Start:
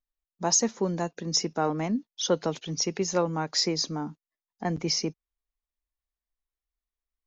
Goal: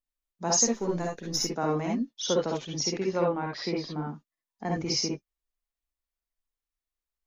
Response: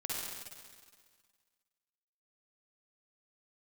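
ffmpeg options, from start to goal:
-filter_complex "[0:a]asettb=1/sr,asplit=3[s0][s1][s2];[s0]atrim=end=0.664[s3];[s1]atrim=start=0.66:end=1.45,asetpts=PTS-STARTPTS,afade=t=in:d=0.004:c=qsin,afade=t=out:st=0.786:d=0.004:c=qsin,aeval=exprs='if(lt(val(0),0),0.708*val(0),val(0))':c=same[s4];[s2]atrim=start=1.446[s5];[s3][s4]acrossfade=d=0.004:c1=hsin:c2=qsin[s6];[s6][s5]acrossfade=d=0.004:c1=qsin:c2=hsin,asettb=1/sr,asplit=3[s7][s8][s9];[s7]atrim=end=3.004[s10];[s8]atrim=start=3:end=4.09,asetpts=PTS-STARTPTS,afade=t=in:d=0.004:c=qsin,afade=t=out:st=1.086:d=0.004:c=qsin,lowpass=f=3600:w=0.5412,lowpass=f=3600:w=1.3066[s11];[s9]atrim=start=4.086[s12];[s10][s11]acrossfade=d=0.004:c1=hsin:c2=qsin[s13];[s13][s12]acrossfade=d=0.004:c1=qsin:c2=hsin[s14];[1:a]atrim=start_sample=2205,atrim=end_sample=3969[s15];[s14][s15]afir=irnorm=-1:irlink=0"

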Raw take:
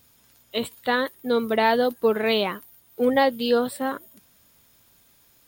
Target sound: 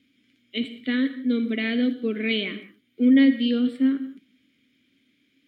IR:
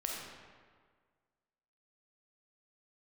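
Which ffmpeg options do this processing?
-filter_complex "[0:a]asplit=3[s0][s1][s2];[s0]bandpass=f=270:t=q:w=8,volume=1[s3];[s1]bandpass=f=2290:t=q:w=8,volume=0.501[s4];[s2]bandpass=f=3010:t=q:w=8,volume=0.355[s5];[s3][s4][s5]amix=inputs=3:normalize=0,bass=f=250:g=0,treble=f=4000:g=-6,asplit=2[s6][s7];[1:a]atrim=start_sample=2205,afade=t=out:st=0.26:d=0.01,atrim=end_sample=11907[s8];[s7][s8]afir=irnorm=-1:irlink=0,volume=0.422[s9];[s6][s9]amix=inputs=2:normalize=0,volume=2.82"

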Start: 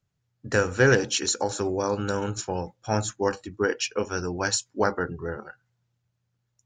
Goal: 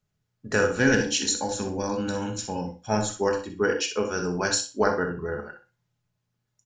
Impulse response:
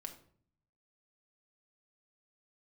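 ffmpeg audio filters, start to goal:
-filter_complex "[0:a]asettb=1/sr,asplit=3[s0][s1][s2];[s0]atrim=end=0.794[s3];[s1]atrim=start=0.79:end=2.9,asetpts=PTS-STARTPTS,afade=t=in:d=0.004:c=qsin,afade=t=out:st=2.106:d=0.004:c=qsin,equalizer=f=250:t=o:w=0.33:g=7,equalizer=f=400:t=o:w=0.33:g=-11,equalizer=f=630:t=o:w=0.33:g=-5,equalizer=f=1250:t=o:w=0.33:g=-11[s4];[s2]atrim=start=2.896[s5];[s3][s4]acrossfade=d=0.004:c1=hsin:c2=qsin[s6];[s6][s5]acrossfade=d=0.004:c1=qsin:c2=hsin,aecho=1:1:62|124|186:0.282|0.0592|0.0124[s7];[1:a]atrim=start_sample=2205,atrim=end_sample=4410[s8];[s7][s8]afir=irnorm=-1:irlink=0,volume=1.68"

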